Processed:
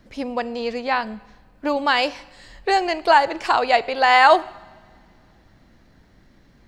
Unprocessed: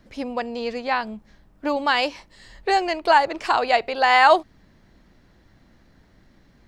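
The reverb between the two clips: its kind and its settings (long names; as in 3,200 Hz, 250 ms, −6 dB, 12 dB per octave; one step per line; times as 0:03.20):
coupled-rooms reverb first 0.98 s, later 3 s, from −18 dB, DRR 17.5 dB
level +1.5 dB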